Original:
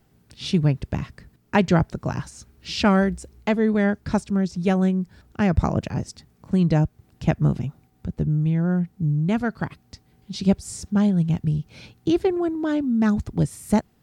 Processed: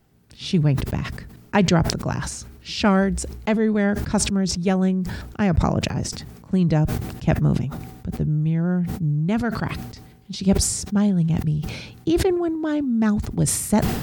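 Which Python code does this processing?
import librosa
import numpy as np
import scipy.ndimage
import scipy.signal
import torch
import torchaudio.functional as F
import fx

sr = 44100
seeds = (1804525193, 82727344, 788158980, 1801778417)

y = fx.sustainer(x, sr, db_per_s=53.0)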